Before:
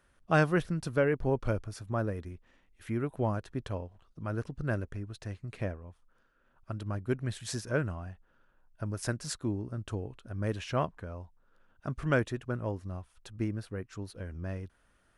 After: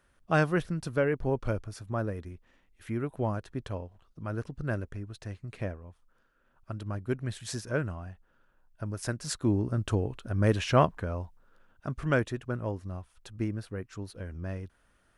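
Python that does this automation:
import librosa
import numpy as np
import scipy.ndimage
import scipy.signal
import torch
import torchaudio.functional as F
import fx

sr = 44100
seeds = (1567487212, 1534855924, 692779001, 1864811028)

y = fx.gain(x, sr, db=fx.line((9.17, 0.0), (9.57, 8.0), (11.19, 8.0), (11.88, 1.0)))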